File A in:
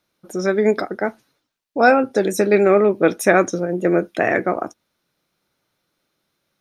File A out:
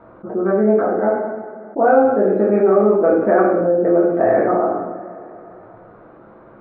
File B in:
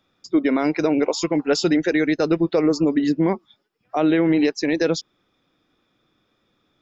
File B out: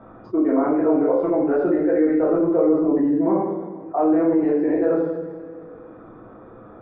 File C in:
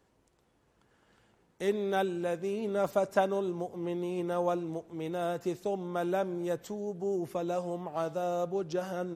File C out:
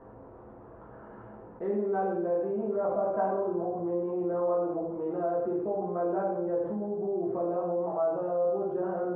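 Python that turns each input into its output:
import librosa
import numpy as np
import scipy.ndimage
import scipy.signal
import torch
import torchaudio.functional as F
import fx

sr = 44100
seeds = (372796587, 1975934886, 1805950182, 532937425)

y = scipy.signal.sosfilt(scipy.signal.butter(4, 1300.0, 'lowpass', fs=sr, output='sos'), x)
y = fx.peak_eq(y, sr, hz=540.0, db=3.0, octaves=1.6)
y = fx.hum_notches(y, sr, base_hz=50, count=7)
y = fx.rev_double_slope(y, sr, seeds[0], early_s=0.68, late_s=2.1, knee_db=-27, drr_db=-7.5)
y = fx.env_flatten(y, sr, amount_pct=50)
y = y * 10.0 ** (-11.5 / 20.0)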